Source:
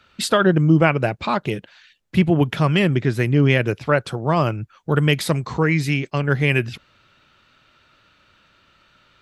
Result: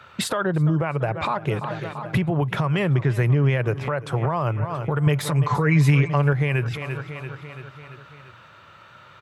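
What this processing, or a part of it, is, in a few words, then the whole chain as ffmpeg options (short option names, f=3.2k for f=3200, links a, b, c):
broadcast voice chain: -filter_complex "[0:a]highpass=f=71:w=0.5412,highpass=f=71:w=1.3066,equalizer=f=250:t=o:w=1:g=-6,equalizer=f=1k:t=o:w=1:g=8,equalizer=f=2k:t=o:w=1:g=-8,equalizer=f=4k:t=o:w=1:g=-8,aecho=1:1:339|678|1017|1356|1695:0.0944|0.0557|0.0329|0.0194|0.0114,deesser=0.5,acompressor=threshold=-29dB:ratio=4,equalizer=f=3.7k:t=o:w=0.36:g=5,alimiter=limit=-23dB:level=0:latency=1:release=67,equalizer=f=125:t=o:w=1:g=8,equalizer=f=500:t=o:w=1:g=4,equalizer=f=2k:t=o:w=1:g=10,asettb=1/sr,asplit=3[a][b][c];[a]atrim=end=5.064[d];[b]atrim=start=5.06:end=6.33,asetpts=PTS-STARTPTS,afade=t=in:d=0.004:c=qsin,afade=t=out:st=1.266:d=0.004:c=qsin,aecho=1:1:6.9:0.7,atrim=end_sample=56007[e];[c]atrim=start=6.326[f];[d][e]acrossfade=d=0.004:c1=hsin:c2=qsin[g];[g][f]acrossfade=d=0.004:c1=qsin:c2=hsin,volume=5.5dB"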